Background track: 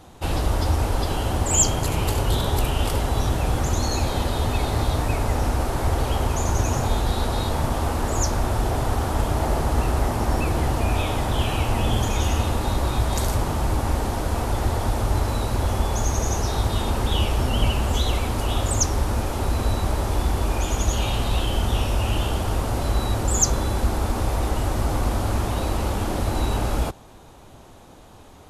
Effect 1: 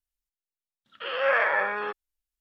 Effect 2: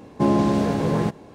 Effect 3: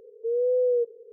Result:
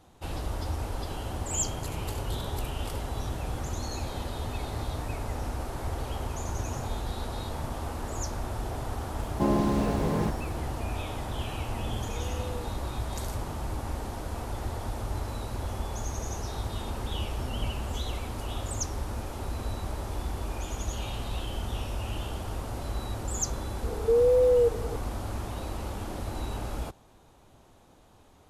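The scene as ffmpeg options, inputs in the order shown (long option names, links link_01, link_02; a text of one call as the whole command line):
ffmpeg -i bed.wav -i cue0.wav -i cue1.wav -i cue2.wav -filter_complex "[3:a]asplit=2[link_01][link_02];[0:a]volume=-11dB[link_03];[2:a]aeval=exprs='val(0)*gte(abs(val(0)),0.0112)':channel_layout=same[link_04];[link_01]lowshelf=frequency=350:gain=-10[link_05];[link_02]alimiter=level_in=27.5dB:limit=-1dB:release=50:level=0:latency=1[link_06];[link_04]atrim=end=1.34,asetpts=PTS-STARTPTS,volume=-6.5dB,afade=type=in:duration=0.004:curve=hsin,afade=type=out:start_time=1.336:duration=0.004:curve=hsin,adelay=9200[link_07];[link_05]atrim=end=1.12,asetpts=PTS-STARTPTS,volume=-16.5dB,afade=type=in:duration=0.004:curve=hsin,afade=type=out:start_time=1.116:duration=0.004:curve=hsin,adelay=11840[link_08];[link_06]atrim=end=1.12,asetpts=PTS-STARTPTS,volume=-16.5dB,afade=type=in:duration=0.004:curve=hsin,afade=type=out:start_time=1.116:duration=0.004:curve=hsin,adelay=23840[link_09];[link_03][link_07][link_08][link_09]amix=inputs=4:normalize=0" out.wav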